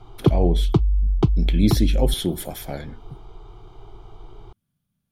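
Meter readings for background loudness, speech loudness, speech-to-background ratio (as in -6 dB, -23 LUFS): -22.5 LUFS, -25.5 LUFS, -3.0 dB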